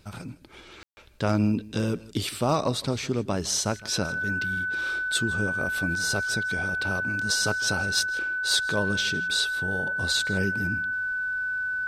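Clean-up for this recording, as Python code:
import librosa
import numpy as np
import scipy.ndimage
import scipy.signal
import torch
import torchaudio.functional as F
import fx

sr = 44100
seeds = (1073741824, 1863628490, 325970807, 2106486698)

y = fx.fix_declip(x, sr, threshold_db=-13.0)
y = fx.notch(y, sr, hz=1500.0, q=30.0)
y = fx.fix_ambience(y, sr, seeds[0], print_start_s=1.92, print_end_s=2.42, start_s=0.83, end_s=0.97)
y = fx.fix_echo_inverse(y, sr, delay_ms=160, level_db=-20.0)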